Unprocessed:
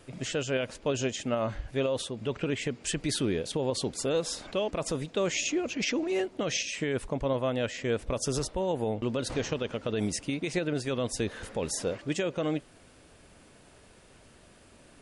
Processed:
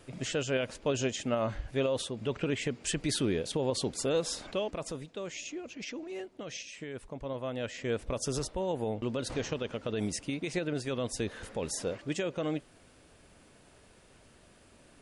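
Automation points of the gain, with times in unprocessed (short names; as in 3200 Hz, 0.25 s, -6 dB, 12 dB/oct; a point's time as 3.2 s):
4.45 s -1 dB
5.21 s -11 dB
7.05 s -11 dB
7.91 s -3 dB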